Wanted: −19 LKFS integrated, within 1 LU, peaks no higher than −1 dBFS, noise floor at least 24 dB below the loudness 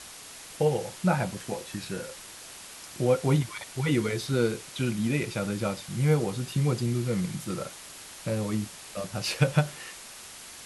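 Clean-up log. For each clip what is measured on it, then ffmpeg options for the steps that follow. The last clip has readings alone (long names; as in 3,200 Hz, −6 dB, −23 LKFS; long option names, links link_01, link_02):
background noise floor −45 dBFS; target noise floor −53 dBFS; integrated loudness −29.0 LKFS; sample peak −8.0 dBFS; target loudness −19.0 LKFS
→ -af "afftdn=noise_reduction=8:noise_floor=-45"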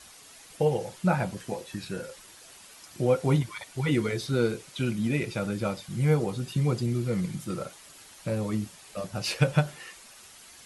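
background noise floor −51 dBFS; target noise floor −53 dBFS
→ -af "afftdn=noise_reduction=6:noise_floor=-51"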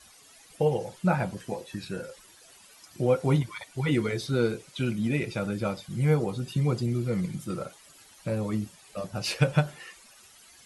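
background noise floor −55 dBFS; integrated loudness −29.0 LKFS; sample peak −8.0 dBFS; target loudness −19.0 LKFS
→ -af "volume=10dB,alimiter=limit=-1dB:level=0:latency=1"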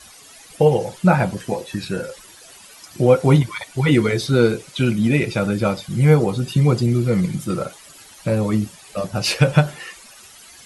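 integrated loudness −19.0 LKFS; sample peak −1.0 dBFS; background noise floor −45 dBFS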